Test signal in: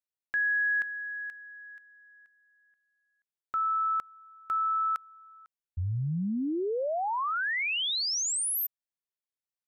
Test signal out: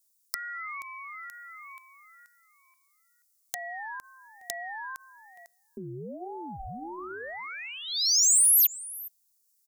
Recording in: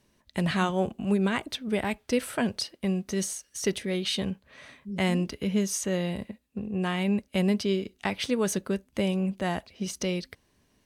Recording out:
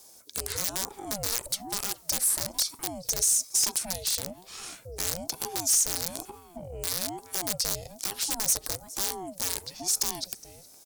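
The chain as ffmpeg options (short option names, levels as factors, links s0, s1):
-filter_complex "[0:a]asplit=2[s0][s1];[s1]adelay=414,volume=0.0501,highshelf=f=4000:g=-9.32[s2];[s0][s2]amix=inputs=2:normalize=0,acompressor=threshold=0.00398:ratio=2.5:attack=23:release=42:knee=1:detection=rms,aeval=exprs='(mod(42.2*val(0)+1,2)-1)/42.2':c=same,aexciter=amount=13.5:drive=1.2:freq=4600,bandreject=f=170.6:t=h:w=4,bandreject=f=341.2:t=h:w=4,bandreject=f=511.8:t=h:w=4,bandreject=f=682.4:t=h:w=4,bandreject=f=853:t=h:w=4,bandreject=f=1023.6:t=h:w=4,acontrast=42,asoftclip=type=tanh:threshold=0.211,aeval=exprs='val(0)*sin(2*PI*430*n/s+430*0.45/1.1*sin(2*PI*1.1*n/s))':c=same"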